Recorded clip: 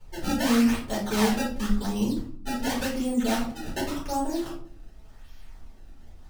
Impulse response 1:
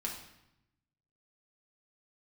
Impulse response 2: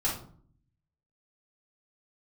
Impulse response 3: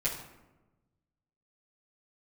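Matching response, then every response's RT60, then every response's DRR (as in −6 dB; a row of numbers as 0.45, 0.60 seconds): 2; 0.85, 0.55, 1.1 seconds; −2.0, −7.0, −10.5 decibels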